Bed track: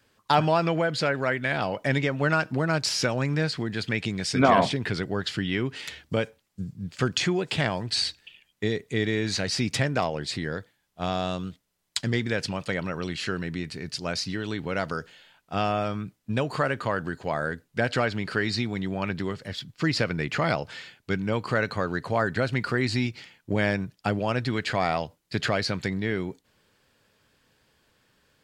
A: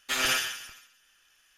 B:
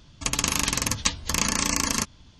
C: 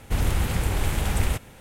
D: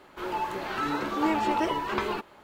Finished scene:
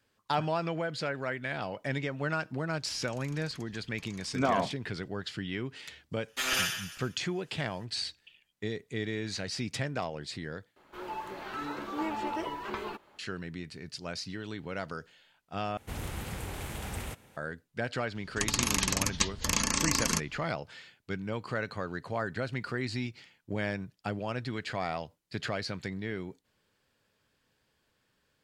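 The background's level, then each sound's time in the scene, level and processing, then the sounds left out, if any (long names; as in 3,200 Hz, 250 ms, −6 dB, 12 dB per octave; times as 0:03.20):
bed track −8.5 dB
0:02.69: mix in B −14 dB + downward compressor 2 to 1, threshold −48 dBFS
0:06.28: mix in A −3 dB
0:10.76: overwrite with D −8 dB
0:15.77: overwrite with C −10 dB + high-pass filter 110 Hz 6 dB per octave
0:18.15: mix in B −6 dB + automatic gain control gain up to 4.5 dB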